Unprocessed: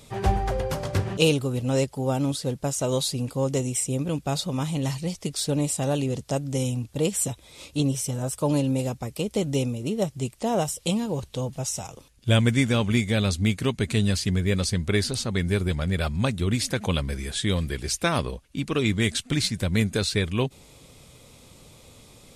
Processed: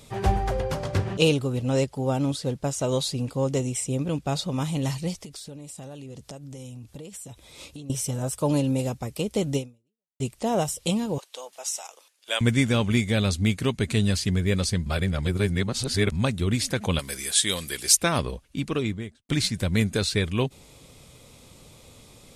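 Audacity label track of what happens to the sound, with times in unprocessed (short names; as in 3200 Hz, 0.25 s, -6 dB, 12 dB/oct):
0.590000	4.580000	high shelf 11000 Hz -11 dB
5.220000	7.900000	compressor 20:1, threshold -36 dBFS
9.560000	10.200000	fade out exponential
11.180000	12.410000	Bessel high-pass 790 Hz, order 4
14.860000	16.120000	reverse
16.990000	17.970000	RIAA curve recording
18.580000	19.290000	studio fade out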